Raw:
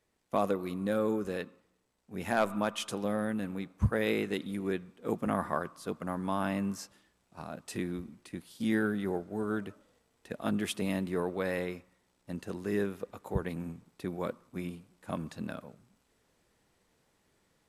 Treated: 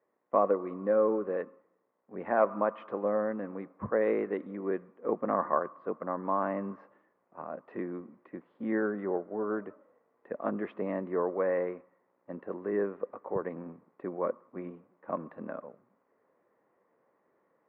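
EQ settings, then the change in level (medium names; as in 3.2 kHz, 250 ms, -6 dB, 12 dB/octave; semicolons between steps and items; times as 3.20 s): distance through air 64 m; cabinet simulation 430–2100 Hz, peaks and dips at 550 Hz +5 dB, 1.1 kHz +9 dB, 1.9 kHz +5 dB; tilt shelf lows +9 dB, about 840 Hz; 0.0 dB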